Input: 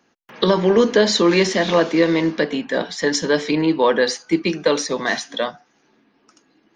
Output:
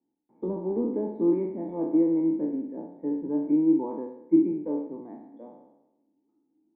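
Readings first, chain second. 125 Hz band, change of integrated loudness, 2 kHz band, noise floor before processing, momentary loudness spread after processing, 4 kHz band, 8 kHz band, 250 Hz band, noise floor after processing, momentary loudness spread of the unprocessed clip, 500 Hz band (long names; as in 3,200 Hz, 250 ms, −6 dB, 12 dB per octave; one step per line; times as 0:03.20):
−13.5 dB, −8.5 dB, below −40 dB, −63 dBFS, 14 LU, below −40 dB, below −40 dB, −4.0 dB, −75 dBFS, 8 LU, −13.0 dB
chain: peak hold with a decay on every bin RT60 0.98 s
formant resonators in series u
expander for the loud parts 1.5 to 1, over −35 dBFS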